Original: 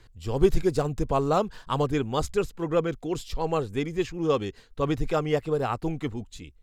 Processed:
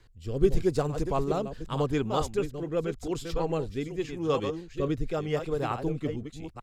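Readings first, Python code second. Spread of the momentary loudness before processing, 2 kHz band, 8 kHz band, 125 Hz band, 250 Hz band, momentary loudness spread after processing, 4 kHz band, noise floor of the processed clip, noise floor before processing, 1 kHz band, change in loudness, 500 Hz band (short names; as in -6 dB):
9 LU, -4.0 dB, -3.0 dB, -2.0 dB, -2.0 dB, 7 LU, -3.0 dB, -49 dBFS, -54 dBFS, -4.0 dB, -3.0 dB, -2.5 dB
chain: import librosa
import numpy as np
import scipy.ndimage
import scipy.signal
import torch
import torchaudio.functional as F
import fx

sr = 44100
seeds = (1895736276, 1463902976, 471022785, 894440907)

y = fx.reverse_delay(x, sr, ms=440, wet_db=-8)
y = fx.rotary(y, sr, hz=0.85)
y = F.gain(torch.from_numpy(y), -1.5).numpy()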